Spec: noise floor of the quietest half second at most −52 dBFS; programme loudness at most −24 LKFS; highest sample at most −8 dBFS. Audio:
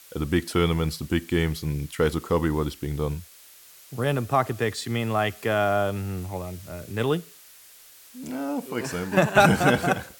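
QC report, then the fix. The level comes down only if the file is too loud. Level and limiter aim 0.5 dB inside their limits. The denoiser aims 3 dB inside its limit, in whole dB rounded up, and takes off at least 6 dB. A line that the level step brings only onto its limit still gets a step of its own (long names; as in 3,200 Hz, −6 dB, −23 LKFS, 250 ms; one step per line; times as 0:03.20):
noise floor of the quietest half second −50 dBFS: out of spec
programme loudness −25.0 LKFS: in spec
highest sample −3.5 dBFS: out of spec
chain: broadband denoise 6 dB, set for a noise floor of −50 dBFS
brickwall limiter −8.5 dBFS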